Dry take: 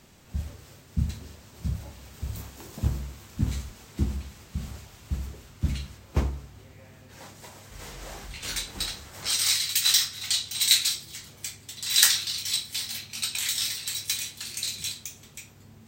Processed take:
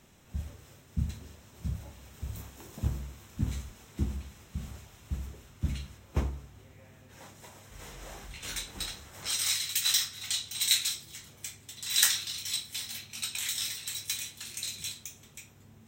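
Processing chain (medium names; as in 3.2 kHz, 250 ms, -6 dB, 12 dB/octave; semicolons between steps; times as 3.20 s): band-stop 4.6 kHz, Q 6.4; trim -4.5 dB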